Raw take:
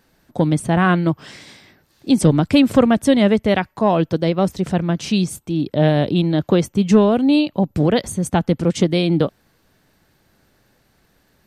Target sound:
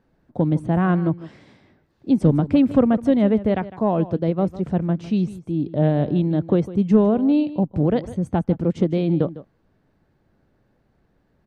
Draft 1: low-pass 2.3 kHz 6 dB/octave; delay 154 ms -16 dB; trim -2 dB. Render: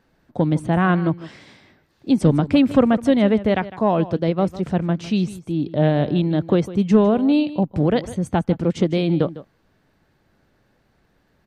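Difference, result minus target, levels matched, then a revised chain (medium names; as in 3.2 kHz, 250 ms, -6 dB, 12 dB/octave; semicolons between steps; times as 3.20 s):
2 kHz band +6.0 dB
low-pass 660 Hz 6 dB/octave; delay 154 ms -16 dB; trim -2 dB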